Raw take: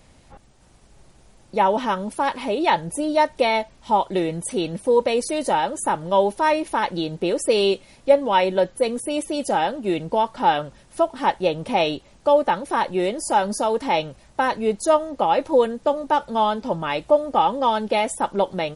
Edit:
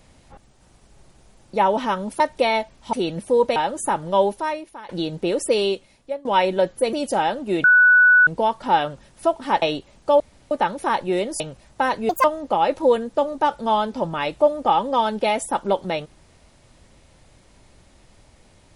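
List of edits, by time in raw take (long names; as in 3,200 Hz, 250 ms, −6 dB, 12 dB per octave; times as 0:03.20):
0:02.20–0:03.20: remove
0:03.93–0:04.50: remove
0:05.13–0:05.55: remove
0:06.24–0:06.88: fade out quadratic, to −17.5 dB
0:07.44–0:08.24: fade out, to −22 dB
0:08.92–0:09.30: remove
0:10.01: insert tone 1,480 Hz −9.5 dBFS 0.63 s
0:11.36–0:11.80: remove
0:12.38: splice in room tone 0.31 s
0:13.27–0:13.99: remove
0:14.68–0:14.93: play speed 165%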